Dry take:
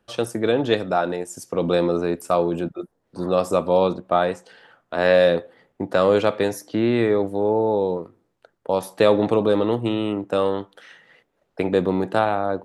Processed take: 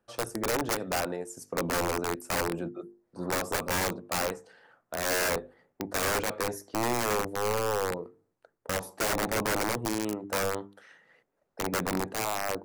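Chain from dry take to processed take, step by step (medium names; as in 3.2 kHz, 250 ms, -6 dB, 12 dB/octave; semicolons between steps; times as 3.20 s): bass shelf 140 Hz -3 dB; integer overflow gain 14.5 dB; peaking EQ 3.3 kHz -8 dB 0.87 oct; hum notches 50/100/150/200/250/300/350/400/450 Hz; trim -6.5 dB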